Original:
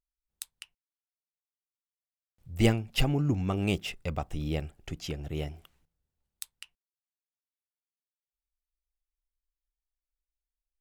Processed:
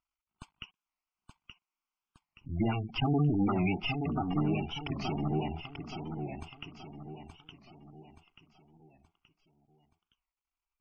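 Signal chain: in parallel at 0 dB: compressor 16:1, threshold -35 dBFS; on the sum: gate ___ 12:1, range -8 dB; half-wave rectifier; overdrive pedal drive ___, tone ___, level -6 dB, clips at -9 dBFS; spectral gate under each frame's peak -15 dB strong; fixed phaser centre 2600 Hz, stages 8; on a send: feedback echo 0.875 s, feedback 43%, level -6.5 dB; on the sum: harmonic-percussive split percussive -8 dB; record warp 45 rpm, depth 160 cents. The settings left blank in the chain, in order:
-56 dBFS, 29 dB, 1500 Hz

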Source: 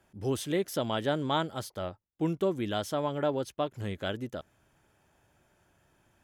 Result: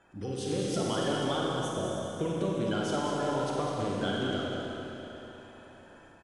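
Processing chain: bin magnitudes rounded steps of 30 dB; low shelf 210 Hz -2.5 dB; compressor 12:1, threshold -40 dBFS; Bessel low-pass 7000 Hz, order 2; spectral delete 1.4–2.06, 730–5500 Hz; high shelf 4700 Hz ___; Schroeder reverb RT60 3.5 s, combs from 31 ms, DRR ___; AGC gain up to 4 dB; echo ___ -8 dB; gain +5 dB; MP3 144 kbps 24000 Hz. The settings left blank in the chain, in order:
+3 dB, -3.5 dB, 0.204 s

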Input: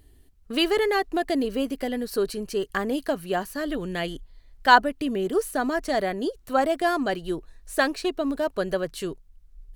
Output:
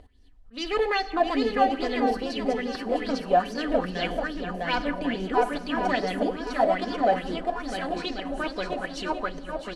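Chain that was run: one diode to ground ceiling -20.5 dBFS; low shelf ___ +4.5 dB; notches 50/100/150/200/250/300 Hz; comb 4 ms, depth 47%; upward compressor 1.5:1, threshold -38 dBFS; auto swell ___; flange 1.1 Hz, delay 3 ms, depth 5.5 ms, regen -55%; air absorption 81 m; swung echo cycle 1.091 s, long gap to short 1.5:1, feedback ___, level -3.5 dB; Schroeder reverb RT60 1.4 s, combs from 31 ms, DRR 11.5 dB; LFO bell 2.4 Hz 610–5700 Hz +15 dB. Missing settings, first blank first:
230 Hz, 0.244 s, 36%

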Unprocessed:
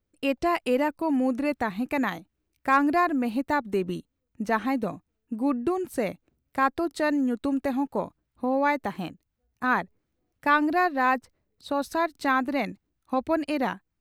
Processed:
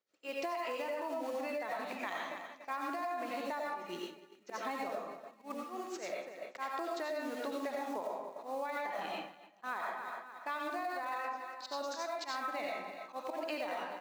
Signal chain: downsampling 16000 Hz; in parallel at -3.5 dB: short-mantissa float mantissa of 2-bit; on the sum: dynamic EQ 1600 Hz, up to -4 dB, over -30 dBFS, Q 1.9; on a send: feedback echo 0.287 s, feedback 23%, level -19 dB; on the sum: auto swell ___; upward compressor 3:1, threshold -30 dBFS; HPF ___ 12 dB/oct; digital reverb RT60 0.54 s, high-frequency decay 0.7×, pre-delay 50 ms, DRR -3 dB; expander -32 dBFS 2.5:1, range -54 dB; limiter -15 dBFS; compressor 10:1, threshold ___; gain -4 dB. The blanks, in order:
0.244 s, 540 Hz, -31 dBFS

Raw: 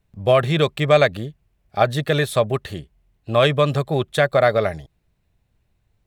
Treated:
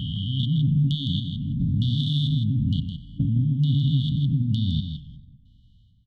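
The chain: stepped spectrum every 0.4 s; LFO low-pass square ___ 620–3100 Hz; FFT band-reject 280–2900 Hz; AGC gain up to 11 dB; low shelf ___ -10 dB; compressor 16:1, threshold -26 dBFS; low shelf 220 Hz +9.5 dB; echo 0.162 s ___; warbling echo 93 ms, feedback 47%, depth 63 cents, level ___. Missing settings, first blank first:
1.1 Hz, 100 Hz, -7 dB, -19 dB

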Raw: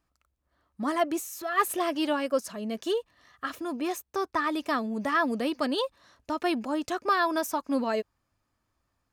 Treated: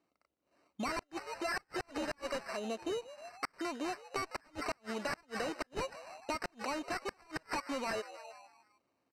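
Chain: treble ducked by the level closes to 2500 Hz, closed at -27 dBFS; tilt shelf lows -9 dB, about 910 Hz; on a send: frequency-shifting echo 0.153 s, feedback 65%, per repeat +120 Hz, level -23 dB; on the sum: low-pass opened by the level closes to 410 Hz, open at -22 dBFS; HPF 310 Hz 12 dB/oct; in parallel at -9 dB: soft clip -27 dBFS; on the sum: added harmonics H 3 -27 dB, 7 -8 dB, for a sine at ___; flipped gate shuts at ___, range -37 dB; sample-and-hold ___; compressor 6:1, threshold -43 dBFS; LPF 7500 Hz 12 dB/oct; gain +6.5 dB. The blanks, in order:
-9.5 dBFS, -15 dBFS, 13×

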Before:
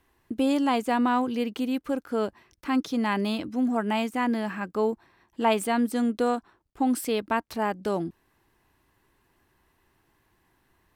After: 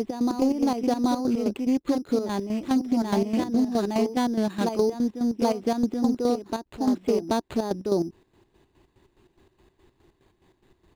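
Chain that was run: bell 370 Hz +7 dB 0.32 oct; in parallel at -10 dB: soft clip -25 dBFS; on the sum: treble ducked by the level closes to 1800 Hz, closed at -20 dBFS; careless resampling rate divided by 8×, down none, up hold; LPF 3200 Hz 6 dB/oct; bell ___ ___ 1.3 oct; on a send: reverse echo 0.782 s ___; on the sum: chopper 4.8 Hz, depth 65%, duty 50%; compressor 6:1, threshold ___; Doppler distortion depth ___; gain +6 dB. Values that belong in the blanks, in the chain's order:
1400 Hz, -8.5 dB, -6 dB, -25 dBFS, 0.18 ms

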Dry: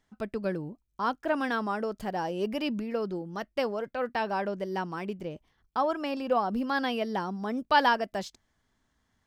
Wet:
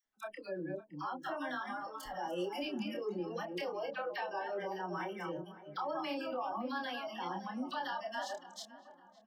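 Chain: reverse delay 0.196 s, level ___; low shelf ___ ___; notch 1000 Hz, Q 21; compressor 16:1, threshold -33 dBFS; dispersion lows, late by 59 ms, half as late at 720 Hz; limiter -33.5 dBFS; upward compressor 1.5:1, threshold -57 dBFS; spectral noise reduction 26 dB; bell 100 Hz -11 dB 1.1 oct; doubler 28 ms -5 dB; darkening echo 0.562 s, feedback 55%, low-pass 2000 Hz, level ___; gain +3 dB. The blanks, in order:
-6.5 dB, 200 Hz, -4 dB, -16 dB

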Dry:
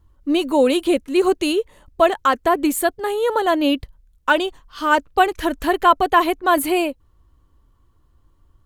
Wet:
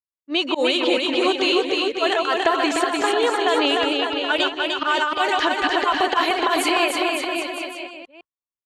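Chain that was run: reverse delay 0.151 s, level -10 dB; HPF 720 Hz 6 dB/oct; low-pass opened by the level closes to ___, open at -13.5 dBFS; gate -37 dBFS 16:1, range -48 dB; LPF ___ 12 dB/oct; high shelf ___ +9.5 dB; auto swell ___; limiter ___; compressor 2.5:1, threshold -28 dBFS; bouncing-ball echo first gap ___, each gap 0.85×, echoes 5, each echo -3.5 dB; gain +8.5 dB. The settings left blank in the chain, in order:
1700 Hz, 5400 Hz, 2600 Hz, 0.16 s, -14.5 dBFS, 0.3 s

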